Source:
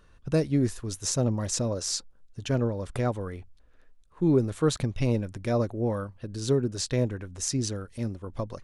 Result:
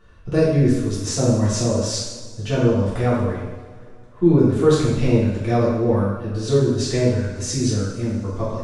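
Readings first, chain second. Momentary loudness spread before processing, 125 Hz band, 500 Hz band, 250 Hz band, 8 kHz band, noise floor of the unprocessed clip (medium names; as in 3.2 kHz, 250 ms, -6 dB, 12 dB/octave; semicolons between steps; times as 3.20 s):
11 LU, +9.0 dB, +9.5 dB, +9.0 dB, +3.5 dB, -57 dBFS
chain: low-pass 3.8 kHz 6 dB/octave; two-slope reverb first 0.91 s, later 3.1 s, from -18 dB, DRR -9 dB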